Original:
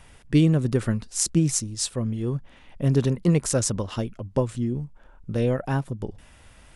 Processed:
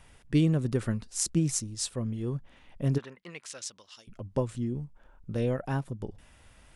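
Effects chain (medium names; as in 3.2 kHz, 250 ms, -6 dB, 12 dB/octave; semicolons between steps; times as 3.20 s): 2.97–4.07 s: band-pass filter 1.4 kHz -> 6.5 kHz, Q 1.3; trim -5.5 dB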